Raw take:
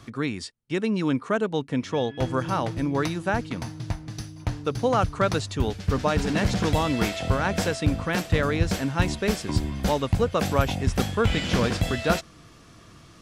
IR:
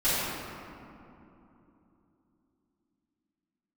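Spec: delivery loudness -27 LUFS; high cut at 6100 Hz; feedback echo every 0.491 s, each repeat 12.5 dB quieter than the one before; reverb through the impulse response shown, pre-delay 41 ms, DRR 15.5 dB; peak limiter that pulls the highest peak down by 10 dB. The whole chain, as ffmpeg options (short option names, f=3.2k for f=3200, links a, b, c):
-filter_complex "[0:a]lowpass=6.1k,alimiter=limit=-17.5dB:level=0:latency=1,aecho=1:1:491|982|1473:0.237|0.0569|0.0137,asplit=2[a][b];[1:a]atrim=start_sample=2205,adelay=41[c];[b][c]afir=irnorm=-1:irlink=0,volume=-29.5dB[d];[a][d]amix=inputs=2:normalize=0,volume=1.5dB"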